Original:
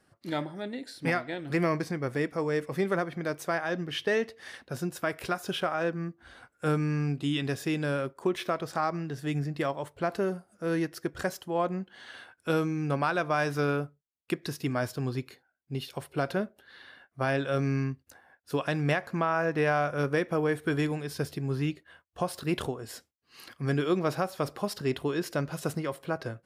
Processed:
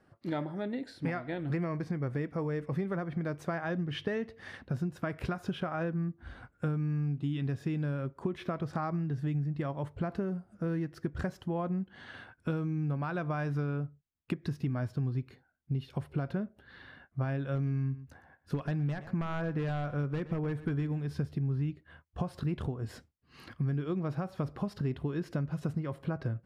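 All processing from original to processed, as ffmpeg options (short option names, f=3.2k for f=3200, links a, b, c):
-filter_complex "[0:a]asettb=1/sr,asplit=3[a][b][c];[a]atrim=end=17.554[d];[b]atrim=start=17.55:end=21.06,asetpts=PTS-STARTPTS,afade=t=in:d=0.004:c=qsin,afade=t=out:st=3.506:d=0.004:c=qsin,aeval=exprs='0.0891*(abs(mod(val(0)/0.0891+3,4)-2)-1)':c=same,aecho=1:1:119:0.119,atrim=end_sample=154791[e];[c]atrim=start=21.056[f];[d][e]acrossfade=d=0.004:c1=hsin:c2=qsin[g];[g][f]acrossfade=d=0.004:c1=qsin:c2=hsin,lowpass=f=1.4k:p=1,asubboost=boost=3.5:cutoff=220,acompressor=threshold=-33dB:ratio=6,volume=3dB"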